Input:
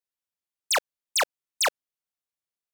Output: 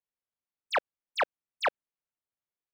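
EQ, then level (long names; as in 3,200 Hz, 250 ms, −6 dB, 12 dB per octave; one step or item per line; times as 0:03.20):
high-frequency loss of the air 410 metres
0.0 dB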